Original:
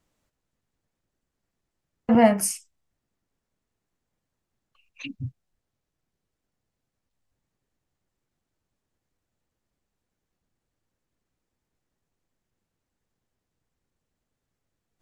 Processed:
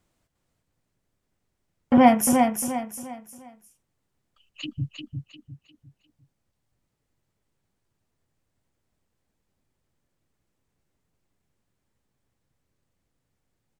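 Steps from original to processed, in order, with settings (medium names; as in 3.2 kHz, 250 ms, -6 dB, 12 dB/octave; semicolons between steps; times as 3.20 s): peaking EQ 100 Hz +3 dB 1.4 oct; feedback delay 383 ms, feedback 35%, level -5 dB; speed mistake 44.1 kHz file played as 48 kHz; trim +1.5 dB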